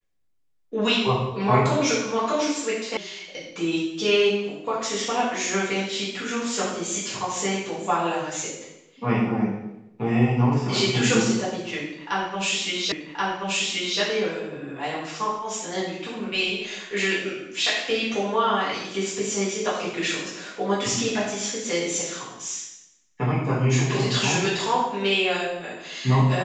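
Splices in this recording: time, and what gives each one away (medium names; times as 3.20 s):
2.97 s: sound stops dead
12.92 s: repeat of the last 1.08 s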